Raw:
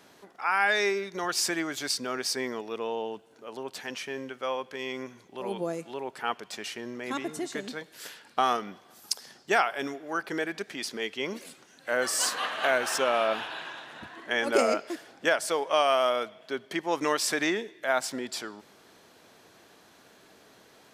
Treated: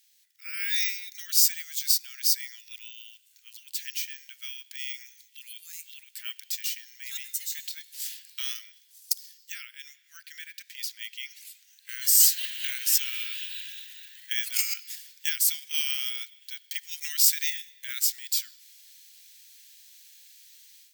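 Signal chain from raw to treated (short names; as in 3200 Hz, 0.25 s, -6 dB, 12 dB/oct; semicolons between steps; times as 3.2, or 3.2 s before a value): steep high-pass 1900 Hz 36 dB/oct; careless resampling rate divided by 2×, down filtered, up hold; differentiator; AGC gain up to 11 dB; high shelf 3400 Hz +3.5 dB, from 9.52 s -5.5 dB, from 11.89 s +4 dB; gain -3.5 dB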